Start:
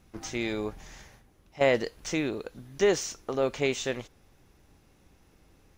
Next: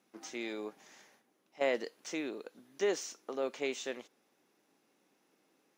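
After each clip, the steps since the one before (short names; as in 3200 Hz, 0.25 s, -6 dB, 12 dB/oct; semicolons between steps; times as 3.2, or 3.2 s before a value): HPF 230 Hz 24 dB/oct; gain -8 dB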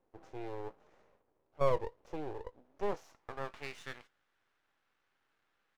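band-pass sweep 500 Hz -> 1500 Hz, 2.56–3.74; doubler 20 ms -14 dB; half-wave rectifier; gain +7.5 dB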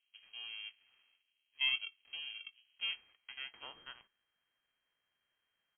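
inverted band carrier 3200 Hz; gain -6.5 dB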